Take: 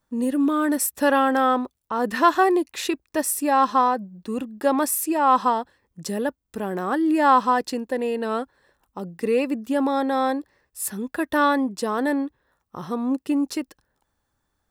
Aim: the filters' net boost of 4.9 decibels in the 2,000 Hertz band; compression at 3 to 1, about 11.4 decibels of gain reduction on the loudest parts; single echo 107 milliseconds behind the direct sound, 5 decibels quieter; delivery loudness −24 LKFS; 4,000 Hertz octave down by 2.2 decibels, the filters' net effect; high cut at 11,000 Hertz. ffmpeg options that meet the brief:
ffmpeg -i in.wav -af "lowpass=11000,equalizer=frequency=2000:width_type=o:gain=7.5,equalizer=frequency=4000:width_type=o:gain=-5.5,acompressor=threshold=-26dB:ratio=3,aecho=1:1:107:0.562,volume=4dB" out.wav

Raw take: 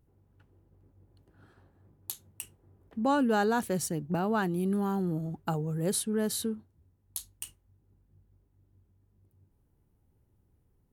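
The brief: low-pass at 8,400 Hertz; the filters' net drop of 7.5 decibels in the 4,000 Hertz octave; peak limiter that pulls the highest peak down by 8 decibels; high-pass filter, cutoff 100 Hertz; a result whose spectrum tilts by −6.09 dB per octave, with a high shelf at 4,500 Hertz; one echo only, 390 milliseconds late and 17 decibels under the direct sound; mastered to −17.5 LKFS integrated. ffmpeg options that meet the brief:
ffmpeg -i in.wav -af "highpass=100,lowpass=8400,equalizer=frequency=4000:width_type=o:gain=-6,highshelf=frequency=4500:gain=-6,alimiter=limit=-24dB:level=0:latency=1,aecho=1:1:390:0.141,volume=16dB" out.wav

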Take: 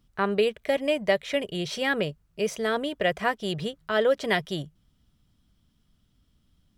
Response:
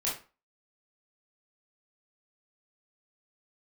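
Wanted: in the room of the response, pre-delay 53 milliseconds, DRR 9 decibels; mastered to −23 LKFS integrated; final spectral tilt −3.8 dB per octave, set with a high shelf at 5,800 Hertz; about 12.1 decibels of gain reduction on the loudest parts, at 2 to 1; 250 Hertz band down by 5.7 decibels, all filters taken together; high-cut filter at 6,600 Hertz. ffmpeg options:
-filter_complex "[0:a]lowpass=6600,equalizer=frequency=250:width_type=o:gain=-8,highshelf=frequency=5800:gain=3.5,acompressor=threshold=-42dB:ratio=2,asplit=2[link_01][link_02];[1:a]atrim=start_sample=2205,adelay=53[link_03];[link_02][link_03]afir=irnorm=-1:irlink=0,volume=-14.5dB[link_04];[link_01][link_04]amix=inputs=2:normalize=0,volume=15dB"

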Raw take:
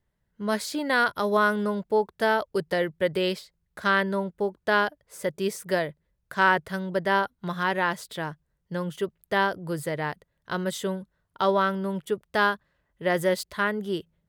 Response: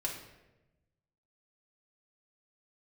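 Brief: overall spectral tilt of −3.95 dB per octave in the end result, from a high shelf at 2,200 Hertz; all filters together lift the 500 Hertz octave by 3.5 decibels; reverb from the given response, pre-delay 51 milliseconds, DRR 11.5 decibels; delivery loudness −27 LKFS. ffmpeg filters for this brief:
-filter_complex "[0:a]equalizer=frequency=500:width_type=o:gain=4,highshelf=frequency=2200:gain=6.5,asplit=2[link_01][link_02];[1:a]atrim=start_sample=2205,adelay=51[link_03];[link_02][link_03]afir=irnorm=-1:irlink=0,volume=-14dB[link_04];[link_01][link_04]amix=inputs=2:normalize=0,volume=-3.5dB"

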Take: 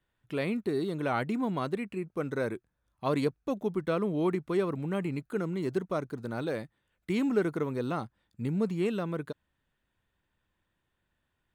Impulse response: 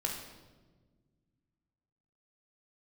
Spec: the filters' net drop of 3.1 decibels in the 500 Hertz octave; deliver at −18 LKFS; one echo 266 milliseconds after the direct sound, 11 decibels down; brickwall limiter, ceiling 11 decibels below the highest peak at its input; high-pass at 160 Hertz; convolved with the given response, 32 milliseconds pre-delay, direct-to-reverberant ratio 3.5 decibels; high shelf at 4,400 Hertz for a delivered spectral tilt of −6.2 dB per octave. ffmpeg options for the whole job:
-filter_complex "[0:a]highpass=160,equalizer=frequency=500:width_type=o:gain=-4,highshelf=frequency=4400:gain=4,alimiter=level_in=4dB:limit=-24dB:level=0:latency=1,volume=-4dB,aecho=1:1:266:0.282,asplit=2[link_01][link_02];[1:a]atrim=start_sample=2205,adelay=32[link_03];[link_02][link_03]afir=irnorm=-1:irlink=0,volume=-7dB[link_04];[link_01][link_04]amix=inputs=2:normalize=0,volume=18.5dB"

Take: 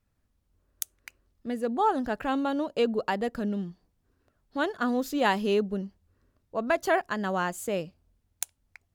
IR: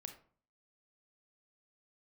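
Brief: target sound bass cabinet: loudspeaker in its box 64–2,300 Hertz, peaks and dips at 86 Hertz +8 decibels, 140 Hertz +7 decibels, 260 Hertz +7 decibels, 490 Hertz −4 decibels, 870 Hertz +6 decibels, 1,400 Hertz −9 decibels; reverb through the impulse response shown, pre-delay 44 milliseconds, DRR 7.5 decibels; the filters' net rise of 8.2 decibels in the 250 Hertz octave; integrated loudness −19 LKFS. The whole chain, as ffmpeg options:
-filter_complex "[0:a]equalizer=frequency=250:width_type=o:gain=4,asplit=2[link_01][link_02];[1:a]atrim=start_sample=2205,adelay=44[link_03];[link_02][link_03]afir=irnorm=-1:irlink=0,volume=-2.5dB[link_04];[link_01][link_04]amix=inputs=2:normalize=0,highpass=frequency=64:width=0.5412,highpass=frequency=64:width=1.3066,equalizer=frequency=86:width_type=q:width=4:gain=8,equalizer=frequency=140:width_type=q:width=4:gain=7,equalizer=frequency=260:width_type=q:width=4:gain=7,equalizer=frequency=490:width_type=q:width=4:gain=-4,equalizer=frequency=870:width_type=q:width=4:gain=6,equalizer=frequency=1400:width_type=q:width=4:gain=-9,lowpass=frequency=2300:width=0.5412,lowpass=frequency=2300:width=1.3066,volume=4.5dB"

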